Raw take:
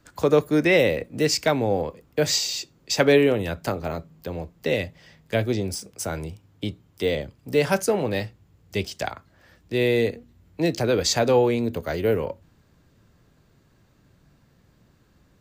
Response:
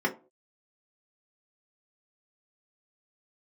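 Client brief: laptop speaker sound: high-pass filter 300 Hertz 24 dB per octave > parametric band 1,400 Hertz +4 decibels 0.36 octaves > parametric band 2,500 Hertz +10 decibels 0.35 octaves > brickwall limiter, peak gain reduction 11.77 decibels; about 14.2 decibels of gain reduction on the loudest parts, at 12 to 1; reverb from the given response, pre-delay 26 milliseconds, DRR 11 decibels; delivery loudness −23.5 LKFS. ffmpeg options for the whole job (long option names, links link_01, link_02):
-filter_complex "[0:a]acompressor=threshold=-27dB:ratio=12,asplit=2[link_01][link_02];[1:a]atrim=start_sample=2205,adelay=26[link_03];[link_02][link_03]afir=irnorm=-1:irlink=0,volume=-22dB[link_04];[link_01][link_04]amix=inputs=2:normalize=0,highpass=frequency=300:width=0.5412,highpass=frequency=300:width=1.3066,equalizer=frequency=1400:width_type=o:width=0.36:gain=4,equalizer=frequency=2500:width_type=o:width=0.35:gain=10,volume=12.5dB,alimiter=limit=-13dB:level=0:latency=1"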